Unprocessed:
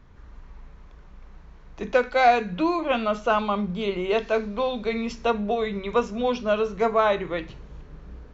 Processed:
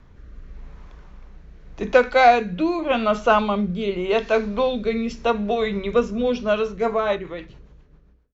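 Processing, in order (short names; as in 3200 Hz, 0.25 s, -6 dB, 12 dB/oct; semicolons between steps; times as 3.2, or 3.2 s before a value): ending faded out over 1.96 s; rotary speaker horn 0.85 Hz, later 7.5 Hz, at 6.41; gain +5.5 dB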